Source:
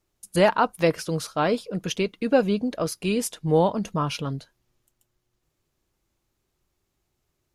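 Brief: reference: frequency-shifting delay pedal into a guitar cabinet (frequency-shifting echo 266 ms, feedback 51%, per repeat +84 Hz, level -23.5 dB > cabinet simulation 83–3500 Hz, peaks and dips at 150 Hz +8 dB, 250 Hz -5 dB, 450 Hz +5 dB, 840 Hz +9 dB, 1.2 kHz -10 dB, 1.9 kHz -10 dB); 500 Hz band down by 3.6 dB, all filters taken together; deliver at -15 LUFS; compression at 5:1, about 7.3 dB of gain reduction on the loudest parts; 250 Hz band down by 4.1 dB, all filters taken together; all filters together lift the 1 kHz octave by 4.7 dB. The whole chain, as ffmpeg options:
-filter_complex "[0:a]equalizer=f=250:t=o:g=-6.5,equalizer=f=500:t=o:g=-7,equalizer=f=1000:t=o:g=4,acompressor=threshold=0.0631:ratio=5,asplit=4[s0][s1][s2][s3];[s1]adelay=266,afreqshift=84,volume=0.0668[s4];[s2]adelay=532,afreqshift=168,volume=0.0343[s5];[s3]adelay=798,afreqshift=252,volume=0.0174[s6];[s0][s4][s5][s6]amix=inputs=4:normalize=0,highpass=83,equalizer=f=150:t=q:w=4:g=8,equalizer=f=250:t=q:w=4:g=-5,equalizer=f=450:t=q:w=4:g=5,equalizer=f=840:t=q:w=4:g=9,equalizer=f=1200:t=q:w=4:g=-10,equalizer=f=1900:t=q:w=4:g=-10,lowpass=f=3500:w=0.5412,lowpass=f=3500:w=1.3066,volume=5.01"

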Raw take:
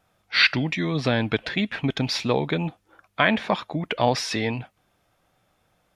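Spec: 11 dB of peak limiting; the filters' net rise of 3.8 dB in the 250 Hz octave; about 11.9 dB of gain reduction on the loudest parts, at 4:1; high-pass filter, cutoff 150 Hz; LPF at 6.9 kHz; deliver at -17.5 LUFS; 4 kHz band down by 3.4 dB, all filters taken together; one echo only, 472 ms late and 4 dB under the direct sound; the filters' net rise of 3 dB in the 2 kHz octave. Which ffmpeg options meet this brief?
-af "highpass=150,lowpass=6900,equalizer=f=250:t=o:g=5.5,equalizer=f=2000:t=o:g=5,equalizer=f=4000:t=o:g=-5.5,acompressor=threshold=0.0501:ratio=4,alimiter=limit=0.119:level=0:latency=1,aecho=1:1:472:0.631,volume=4.47"

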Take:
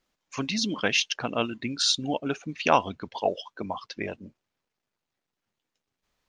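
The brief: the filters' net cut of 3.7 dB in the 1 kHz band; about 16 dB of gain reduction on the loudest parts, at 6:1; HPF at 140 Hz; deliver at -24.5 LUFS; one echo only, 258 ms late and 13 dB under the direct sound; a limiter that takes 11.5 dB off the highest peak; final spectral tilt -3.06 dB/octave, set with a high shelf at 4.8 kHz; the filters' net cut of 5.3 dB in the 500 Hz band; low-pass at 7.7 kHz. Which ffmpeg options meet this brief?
-af "highpass=140,lowpass=7700,equalizer=f=500:t=o:g=-6,equalizer=f=1000:t=o:g=-3,highshelf=f=4800:g=9,acompressor=threshold=0.0178:ratio=6,alimiter=level_in=2.11:limit=0.0631:level=0:latency=1,volume=0.473,aecho=1:1:258:0.224,volume=7.94"

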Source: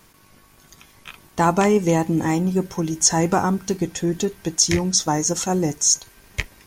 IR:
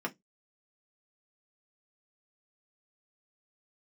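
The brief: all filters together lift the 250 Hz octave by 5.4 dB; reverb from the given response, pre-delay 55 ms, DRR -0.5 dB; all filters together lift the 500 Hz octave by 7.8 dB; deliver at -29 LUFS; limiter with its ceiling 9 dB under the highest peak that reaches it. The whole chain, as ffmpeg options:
-filter_complex "[0:a]equalizer=f=250:t=o:g=5,equalizer=f=500:t=o:g=8.5,alimiter=limit=0.355:level=0:latency=1,asplit=2[s0][s1];[1:a]atrim=start_sample=2205,adelay=55[s2];[s1][s2]afir=irnorm=-1:irlink=0,volume=0.631[s3];[s0][s3]amix=inputs=2:normalize=0,volume=0.188"

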